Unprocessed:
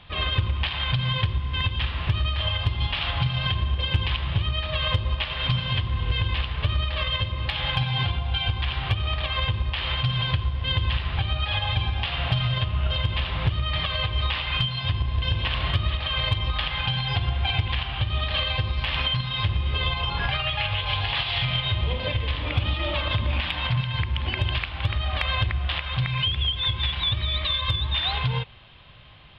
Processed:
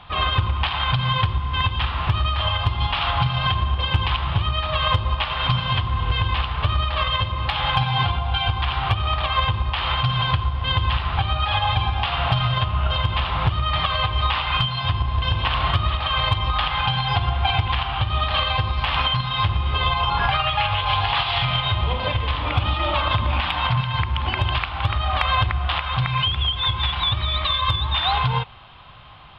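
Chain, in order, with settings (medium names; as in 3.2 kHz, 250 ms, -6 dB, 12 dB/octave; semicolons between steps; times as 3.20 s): high-order bell 1 kHz +8.5 dB 1.2 oct; trim +2.5 dB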